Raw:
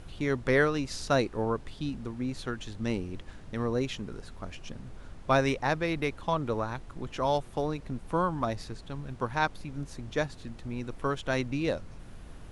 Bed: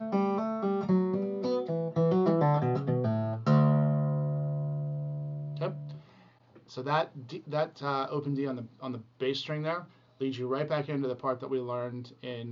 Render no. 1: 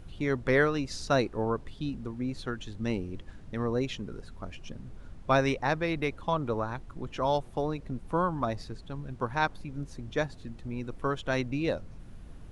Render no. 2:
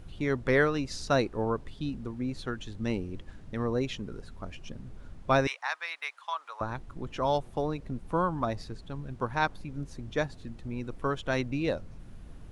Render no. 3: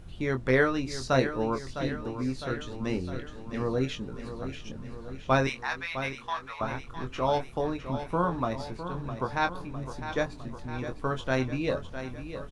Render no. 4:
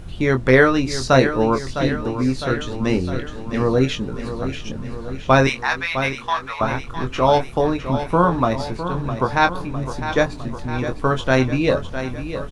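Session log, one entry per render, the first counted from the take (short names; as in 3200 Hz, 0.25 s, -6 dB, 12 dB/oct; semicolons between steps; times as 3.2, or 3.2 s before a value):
denoiser 6 dB, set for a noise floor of -47 dBFS
5.47–6.61 HPF 970 Hz 24 dB/oct
doubler 23 ms -7 dB; feedback echo 0.657 s, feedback 59%, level -10.5 dB
gain +11 dB; limiter -2 dBFS, peak gain reduction 2.5 dB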